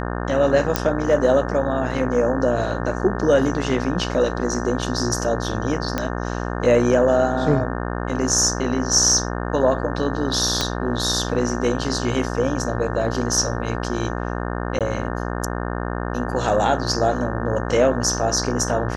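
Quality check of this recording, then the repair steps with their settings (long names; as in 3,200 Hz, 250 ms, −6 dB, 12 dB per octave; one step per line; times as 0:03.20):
mains buzz 60 Hz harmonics 30 −26 dBFS
0:00.76: click −2 dBFS
0:05.98: click −8 dBFS
0:10.61: click −6 dBFS
0:14.79–0:14.81: drop-out 17 ms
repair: click removal
hum removal 60 Hz, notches 30
repair the gap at 0:14.79, 17 ms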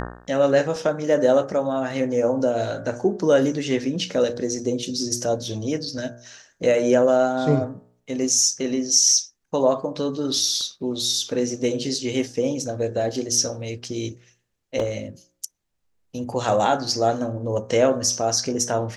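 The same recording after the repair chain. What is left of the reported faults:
0:10.61: click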